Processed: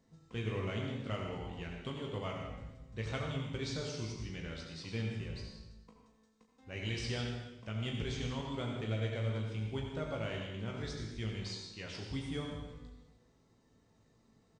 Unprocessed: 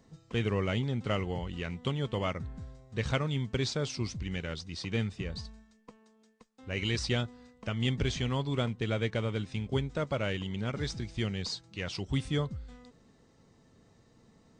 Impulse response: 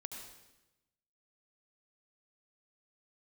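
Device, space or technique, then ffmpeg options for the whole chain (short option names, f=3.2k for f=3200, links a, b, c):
bathroom: -filter_complex "[1:a]atrim=start_sample=2205[a];[0:a][a]afir=irnorm=-1:irlink=0,aecho=1:1:18|37:0.473|0.376,volume=-5dB"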